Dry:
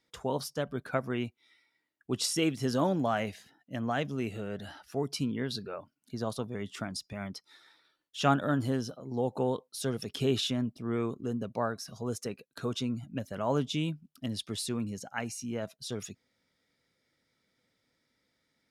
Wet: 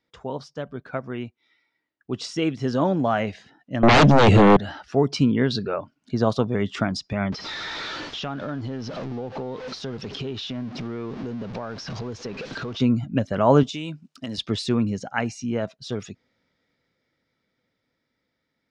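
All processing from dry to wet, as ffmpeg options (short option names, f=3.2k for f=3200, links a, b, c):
-filter_complex "[0:a]asettb=1/sr,asplit=3[a][b][c];[a]atrim=end=3.834[d];[b]atrim=start=3.83:end=4.57,asetpts=PTS-STARTPTS,afade=t=in:d=0.004:c=qsin,afade=t=out:st=0.736:d=0.004:c=qsin,equalizer=f=1.9k:w=0.33:g=-3,aeval=exprs='0.1*sin(PI/2*5.62*val(0)/0.1)':c=same[e];[c]atrim=start=4.566[f];[d][e]acrossfade=d=0.004:c1=hsin:c2=qsin[g];[g][f]acrossfade=d=0.004:c1=qsin:c2=hsin,asettb=1/sr,asplit=3[h][i][j];[h]atrim=end=7.324[k];[i]atrim=start=7.32:end=12.8,asetpts=PTS-STARTPTS,afade=t=in:d=0.004:c=qsin,afade=t=out:st=5.476:d=0.004:c=qsin,aeval=exprs='val(0)+0.5*0.0126*sgn(val(0))':c=same,acompressor=threshold=-43dB:ratio=5:attack=3.2:release=140:knee=1:detection=peak,highshelf=f=7k:t=q:w=1.5:g=-9.5[l];[j]atrim=start=12.796[m];[k][l]acrossfade=d=0.004:c1=hsin:c2=qsin[n];[n][m]acrossfade=d=0.004:c1=qsin:c2=hsin,asettb=1/sr,asplit=3[o][p][q];[o]atrim=end=13.634[r];[p]atrim=start=13.63:end=14.38,asetpts=PTS-STARTPTS,afade=t=in:d=0.004:c=qsin,afade=t=out:st=0.746:d=0.004:c=qsin,aemphasis=mode=production:type=bsi,bandreject=f=3.3k:w=16,acompressor=threshold=-39dB:ratio=5:attack=3.2:release=140:knee=1:detection=peak[s];[q]atrim=start=14.376[t];[r][s]acrossfade=d=0.004:c1=hsin:c2=qsin[u];[u][t]acrossfade=d=0.004:c1=qsin:c2=hsin,lowpass=f=6.9k:w=0.5412,lowpass=f=6.9k:w=1.3066,highshelf=f=4.9k:g=-11.5,dynaudnorm=f=330:g=21:m=13dB,volume=1dB"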